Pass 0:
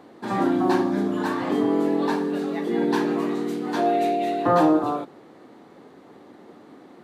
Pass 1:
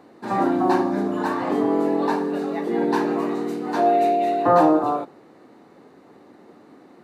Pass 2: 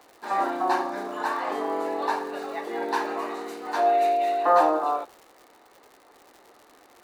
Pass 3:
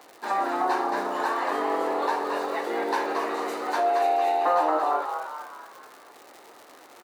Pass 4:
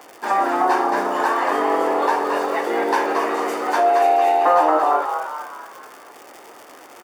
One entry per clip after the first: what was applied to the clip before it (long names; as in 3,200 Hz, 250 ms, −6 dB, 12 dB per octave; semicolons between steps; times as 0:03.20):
notch filter 3,300 Hz, Q 8.9; dynamic equaliser 750 Hz, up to +6 dB, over −35 dBFS, Q 0.8; level −1.5 dB
high-pass filter 640 Hz 12 dB per octave; surface crackle 170 per second −40 dBFS
high-pass filter 160 Hz 6 dB per octave; downward compressor 2 to 1, threshold −30 dBFS, peak gain reduction 9 dB; echo with shifted repeats 225 ms, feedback 47%, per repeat +86 Hz, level −6 dB; level +4 dB
notch filter 4,000 Hz, Q 5.5; level +7 dB